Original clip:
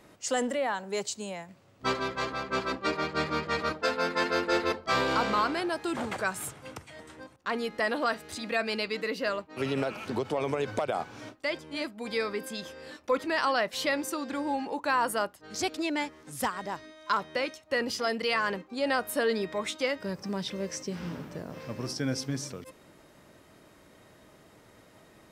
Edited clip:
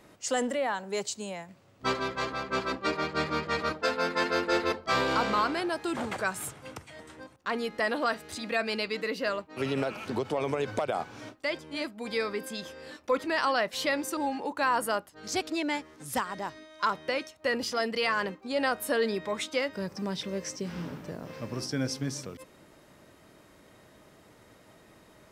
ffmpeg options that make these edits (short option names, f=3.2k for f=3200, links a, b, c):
-filter_complex "[0:a]asplit=2[a][b];[a]atrim=end=14.172[c];[b]atrim=start=14.438[d];[c][d]acrossfade=d=0.004:c1=hsin:c2=hsin"